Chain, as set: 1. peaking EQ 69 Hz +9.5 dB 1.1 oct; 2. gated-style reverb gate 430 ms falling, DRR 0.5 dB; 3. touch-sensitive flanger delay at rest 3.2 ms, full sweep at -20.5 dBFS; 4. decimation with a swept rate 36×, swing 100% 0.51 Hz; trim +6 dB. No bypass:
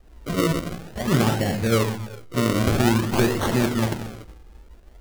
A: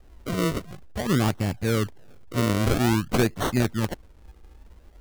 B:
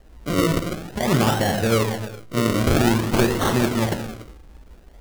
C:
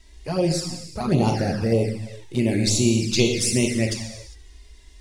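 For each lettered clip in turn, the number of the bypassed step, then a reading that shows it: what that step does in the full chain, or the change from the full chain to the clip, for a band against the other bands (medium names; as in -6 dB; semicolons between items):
2, loudness change -3.0 LU; 3, 125 Hz band -1.5 dB; 4, crest factor change +3.5 dB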